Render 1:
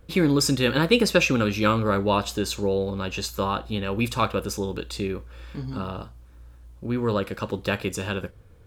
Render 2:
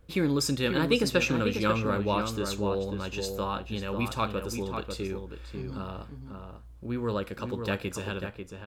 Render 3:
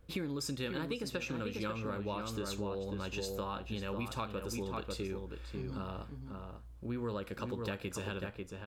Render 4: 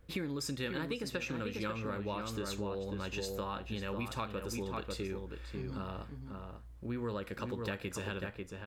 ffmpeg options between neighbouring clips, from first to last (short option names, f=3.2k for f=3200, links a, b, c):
-filter_complex "[0:a]asplit=2[a][b];[b]adelay=542.3,volume=-6dB,highshelf=f=4k:g=-12.2[c];[a][c]amix=inputs=2:normalize=0,volume=-6dB"
-af "acompressor=threshold=-31dB:ratio=10,volume=-3dB"
-af "equalizer=f=1.9k:t=o:w=0.38:g=5.5"